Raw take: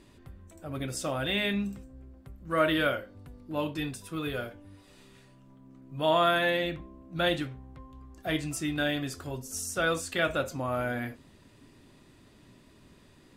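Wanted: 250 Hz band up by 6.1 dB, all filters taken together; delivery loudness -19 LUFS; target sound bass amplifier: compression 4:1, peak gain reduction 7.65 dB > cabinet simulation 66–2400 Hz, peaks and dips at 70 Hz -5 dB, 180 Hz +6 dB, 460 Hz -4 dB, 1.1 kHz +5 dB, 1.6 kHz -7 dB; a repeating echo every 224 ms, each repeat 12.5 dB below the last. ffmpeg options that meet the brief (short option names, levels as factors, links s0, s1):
-af "equalizer=f=250:t=o:g=7,aecho=1:1:224|448|672:0.237|0.0569|0.0137,acompressor=threshold=0.0447:ratio=4,highpass=f=66:w=0.5412,highpass=f=66:w=1.3066,equalizer=f=70:t=q:w=4:g=-5,equalizer=f=180:t=q:w=4:g=6,equalizer=f=460:t=q:w=4:g=-4,equalizer=f=1100:t=q:w=4:g=5,equalizer=f=1600:t=q:w=4:g=-7,lowpass=f=2400:w=0.5412,lowpass=f=2400:w=1.3066,volume=5.01"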